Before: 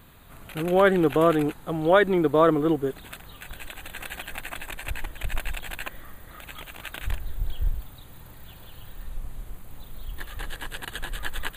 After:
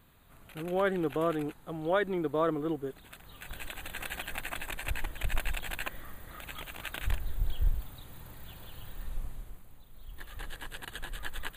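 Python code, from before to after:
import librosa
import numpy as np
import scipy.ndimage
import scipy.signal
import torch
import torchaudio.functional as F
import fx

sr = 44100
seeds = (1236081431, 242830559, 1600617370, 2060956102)

y = fx.gain(x, sr, db=fx.line((3.1, -10.0), (3.57, -2.0), (9.21, -2.0), (9.85, -14.0), (10.35, -7.0)))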